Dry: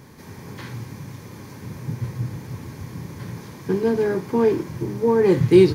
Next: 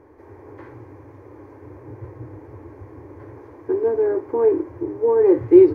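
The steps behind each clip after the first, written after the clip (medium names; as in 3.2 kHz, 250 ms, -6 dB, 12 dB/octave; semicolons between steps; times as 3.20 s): FFT filter 100 Hz 0 dB, 190 Hz -30 dB, 300 Hz +7 dB, 710 Hz +4 dB, 2.1 kHz -7 dB, 3.6 kHz -23 dB; trim -3.5 dB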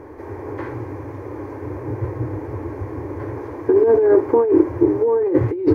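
compressor with a negative ratio -22 dBFS, ratio -1; trim +6.5 dB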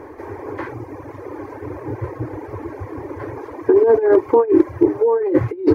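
reverb removal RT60 1.2 s; bass shelf 290 Hz -7.5 dB; hard clipper -8 dBFS, distortion -37 dB; trim +5 dB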